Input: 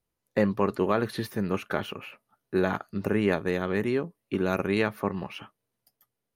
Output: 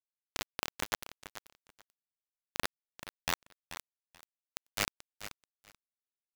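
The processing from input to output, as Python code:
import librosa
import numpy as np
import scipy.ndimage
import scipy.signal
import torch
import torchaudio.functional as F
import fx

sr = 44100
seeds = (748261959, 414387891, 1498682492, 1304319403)

p1 = fx.frame_reverse(x, sr, frame_ms=114.0)
p2 = scipy.signal.sosfilt(scipy.signal.butter(2, 150.0, 'highpass', fs=sr, output='sos'), p1)
p3 = fx.spec_gate(p2, sr, threshold_db=-10, keep='weak')
p4 = fx.high_shelf(p3, sr, hz=2400.0, db=-2.5)
p5 = fx.comb_fb(p4, sr, f0_hz=580.0, decay_s=0.32, harmonics='all', damping=0.0, mix_pct=70)
p6 = fx.env_flanger(p5, sr, rest_ms=7.9, full_db=-37.5)
p7 = fx.quant_companded(p6, sr, bits=2)
p8 = p7 + fx.echo_feedback(p7, sr, ms=434, feedback_pct=17, wet_db=-12.5, dry=0)
y = p8 * 10.0 ** (9.5 / 20.0)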